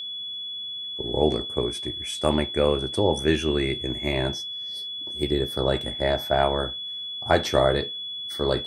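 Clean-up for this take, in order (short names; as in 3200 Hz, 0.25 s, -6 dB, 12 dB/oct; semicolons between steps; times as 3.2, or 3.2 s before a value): notch 3400 Hz, Q 30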